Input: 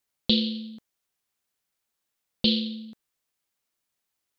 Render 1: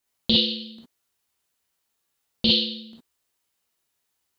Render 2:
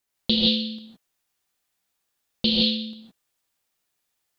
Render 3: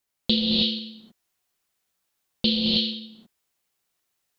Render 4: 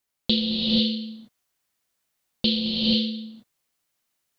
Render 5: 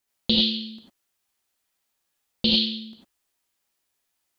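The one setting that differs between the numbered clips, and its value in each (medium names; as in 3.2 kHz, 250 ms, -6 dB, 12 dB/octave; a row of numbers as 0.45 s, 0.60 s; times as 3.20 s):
gated-style reverb, gate: 80 ms, 190 ms, 340 ms, 510 ms, 120 ms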